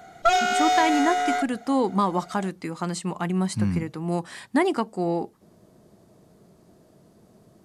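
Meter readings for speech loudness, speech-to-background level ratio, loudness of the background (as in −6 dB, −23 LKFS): −26.0 LKFS, −3.0 dB, −23.0 LKFS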